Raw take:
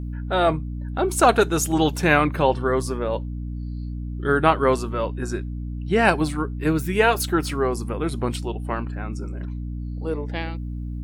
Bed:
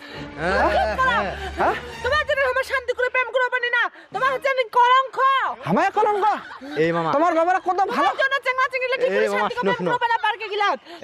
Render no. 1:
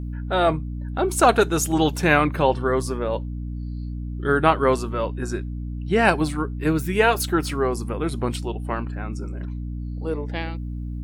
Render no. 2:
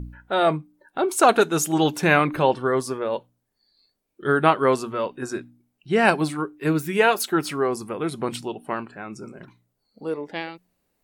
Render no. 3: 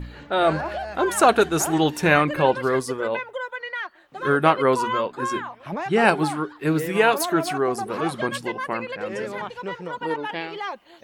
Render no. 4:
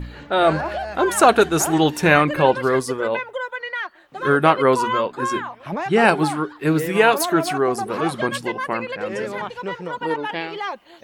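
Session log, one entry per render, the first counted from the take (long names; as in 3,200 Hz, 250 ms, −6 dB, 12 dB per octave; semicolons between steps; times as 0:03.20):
no processing that can be heard
hum removal 60 Hz, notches 5
mix in bed −10.5 dB
level +3 dB; brickwall limiter −2 dBFS, peak gain reduction 2 dB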